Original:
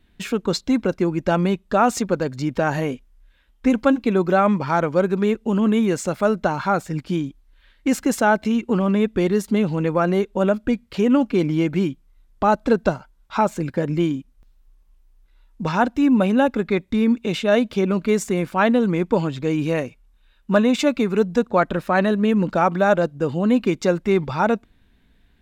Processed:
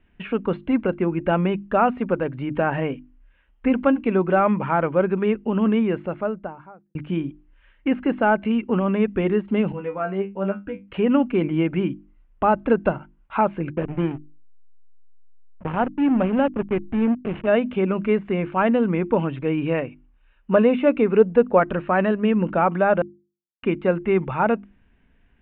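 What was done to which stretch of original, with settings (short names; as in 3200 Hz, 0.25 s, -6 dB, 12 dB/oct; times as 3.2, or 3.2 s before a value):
5.64–6.95 studio fade out
9.72–10.88 resonator 98 Hz, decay 0.18 s, mix 100%
13.72–17.47 backlash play -18 dBFS
20.53–21.6 bell 470 Hz +6 dB
23.02–23.63 mute
whole clip: de-esser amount 80%; elliptic low-pass 2900 Hz, stop band 50 dB; notches 50/100/150/200/250/300/350 Hz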